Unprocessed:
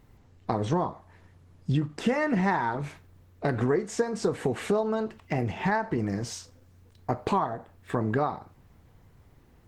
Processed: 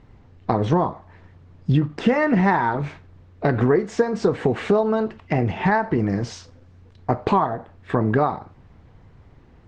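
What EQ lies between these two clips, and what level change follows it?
distance through air 140 m; +7.5 dB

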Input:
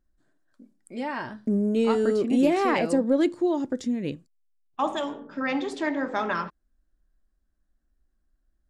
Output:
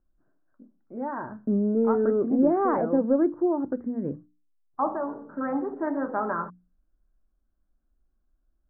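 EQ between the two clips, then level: steep low-pass 1.5 kHz 48 dB/octave; hum notches 60/120/180/240/300 Hz; 0.0 dB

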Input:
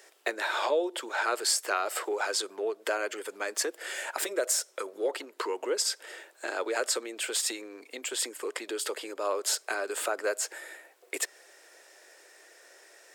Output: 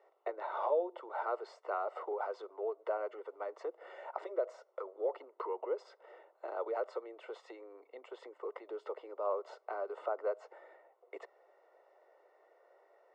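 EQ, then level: Savitzky-Golay filter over 65 samples; high-pass 440 Hz 24 dB/octave; distance through air 160 m; -2.5 dB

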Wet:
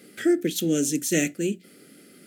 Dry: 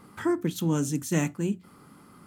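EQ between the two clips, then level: high-pass 340 Hz 12 dB/octave; Butterworth band-stop 1 kHz, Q 0.77; +8.5 dB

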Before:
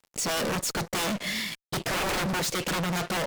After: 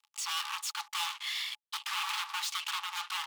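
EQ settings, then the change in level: rippled Chebyshev high-pass 820 Hz, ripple 9 dB; 0.0 dB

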